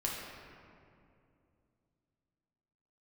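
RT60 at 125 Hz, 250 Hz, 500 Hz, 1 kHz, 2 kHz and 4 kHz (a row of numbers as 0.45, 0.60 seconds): 3.6, 3.4, 2.8, 2.3, 1.9, 1.3 seconds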